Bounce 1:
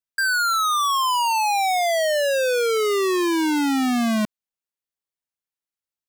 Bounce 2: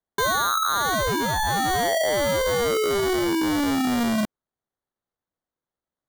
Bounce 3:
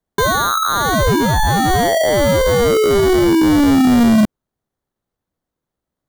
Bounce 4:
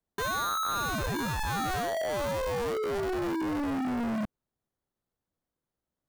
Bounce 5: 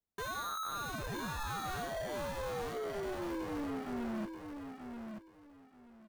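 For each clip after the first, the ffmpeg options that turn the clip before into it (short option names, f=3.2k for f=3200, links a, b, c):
-af "equalizer=f=1k:t=o:w=0.33:g=-5,equalizer=f=3.15k:t=o:w=0.33:g=6,equalizer=f=5k:t=o:w=0.33:g=8,acrusher=samples=17:mix=1:aa=0.000001,volume=-2dB"
-af "lowshelf=f=400:g=10,volume=5dB"
-af "asoftclip=type=hard:threshold=-22dB,volume=-7.5dB"
-filter_complex "[0:a]flanger=delay=0.2:depth=7.6:regen=-52:speed=0.55:shape=triangular,asplit=2[a][b];[b]aecho=0:1:932|1864|2796:0.473|0.104|0.0229[c];[a][c]amix=inputs=2:normalize=0,volume=-5dB"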